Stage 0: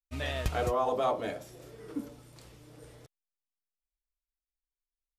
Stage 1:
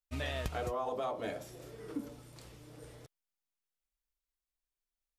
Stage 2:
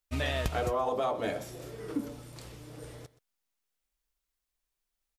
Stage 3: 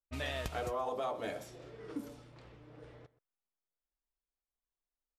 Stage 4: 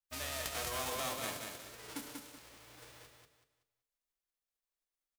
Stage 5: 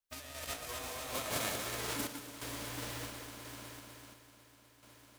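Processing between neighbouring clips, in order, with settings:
compression 6:1, threshold -33 dBFS, peak gain reduction 9 dB
delay 125 ms -18.5 dB; trim +6 dB
level-controlled noise filter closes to 1.1 kHz, open at -32 dBFS; bass shelf 330 Hz -4 dB; trim -5.5 dB
formants flattened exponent 0.3; hum notches 50/100/150/200/250/300/350/400/450 Hz; on a send: feedback delay 189 ms, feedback 31%, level -4.5 dB; on the sum: trim -3 dB
compressor with a negative ratio -44 dBFS, ratio -0.5; echo whose repeats swap between lows and highs 125 ms, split 910 Hz, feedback 89%, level -7.5 dB; random-step tremolo 2.9 Hz, depth 70%; trim +7.5 dB

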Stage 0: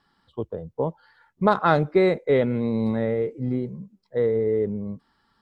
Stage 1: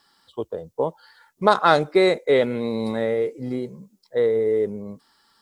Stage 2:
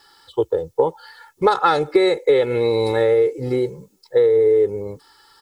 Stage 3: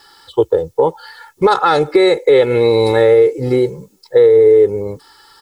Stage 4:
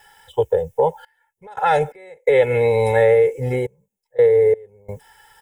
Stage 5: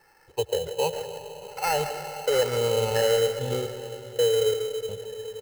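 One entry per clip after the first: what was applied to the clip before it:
tone controls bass -11 dB, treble +14 dB; trim +3.5 dB
comb 2.3 ms, depth 82%; compression 6:1, threshold -19 dBFS, peak gain reduction 10.5 dB; trim +6.5 dB
loudness maximiser +7.5 dB; trim -1 dB
trance gate "xxxxxx...xx..xx" 86 bpm -24 dB; static phaser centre 1.2 kHz, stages 6
speakerphone echo 140 ms, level -10 dB; reverberation RT60 3.9 s, pre-delay 65 ms, DRR 8 dB; sample-rate reducer 3.5 kHz, jitter 0%; trim -8.5 dB

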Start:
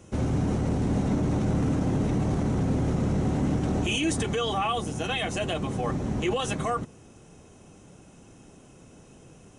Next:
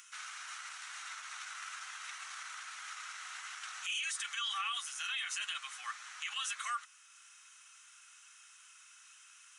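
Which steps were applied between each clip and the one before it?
elliptic high-pass 1.3 kHz, stop band 70 dB; peak limiter -29 dBFS, peak gain reduction 10.5 dB; upward compressor, threshold -54 dBFS; trim +1 dB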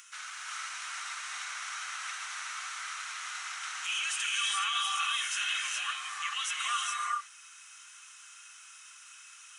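reverberation, pre-delay 3 ms, DRR -1.5 dB; trim +3 dB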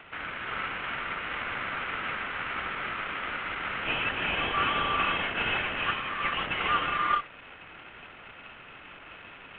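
CVSD coder 16 kbps; trim +7 dB

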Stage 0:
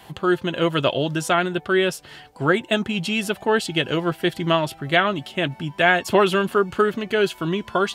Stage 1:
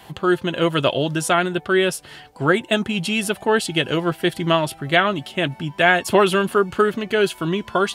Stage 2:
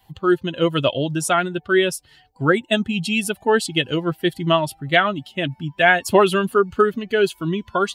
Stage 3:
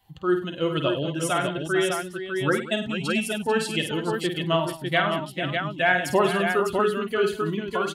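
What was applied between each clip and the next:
dynamic bell 9.9 kHz, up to +7 dB, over -53 dBFS, Q 2.3; trim +1.5 dB
expander on every frequency bin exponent 1.5; trim +2.5 dB
multi-tap echo 50/100/188/443/602 ms -7/-14/-16.5/-11/-5 dB; trim -7 dB

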